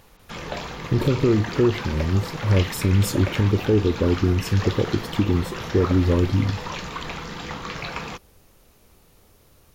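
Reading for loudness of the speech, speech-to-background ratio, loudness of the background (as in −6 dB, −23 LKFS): −22.0 LKFS, 10.0 dB, −32.0 LKFS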